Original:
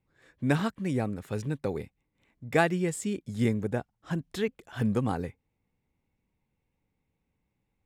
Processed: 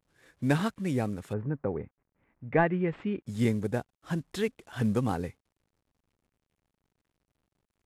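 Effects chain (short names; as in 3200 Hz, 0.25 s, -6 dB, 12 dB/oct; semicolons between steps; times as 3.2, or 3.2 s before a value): CVSD 64 kbps; 1.32–3.26 LPF 1500 Hz -> 2800 Hz 24 dB/oct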